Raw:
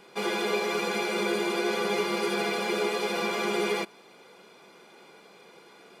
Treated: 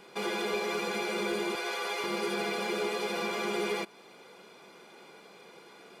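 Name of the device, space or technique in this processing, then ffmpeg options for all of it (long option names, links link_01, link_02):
clipper into limiter: -filter_complex "[0:a]asettb=1/sr,asplit=3[link_01][link_02][link_03];[link_01]atrim=end=1.554[link_04];[link_02]atrim=start=1.55:end=2.04,asetpts=PTS-STARTPTS,afade=type=in:duration=0.004:curve=qsin,afade=type=out:start_time=0.486:duration=0.004:curve=qsin,highpass=630[link_05];[link_03]atrim=start=2.036[link_06];[link_04][link_05]acrossfade=duration=0.004:curve1=hsin:curve2=qsin[link_07];[link_07][link_06]acrossfade=duration=0.004:curve1=qsin:curve2=hsin,asoftclip=type=hard:threshold=-20dB,alimiter=limit=-24dB:level=0:latency=1:release=219"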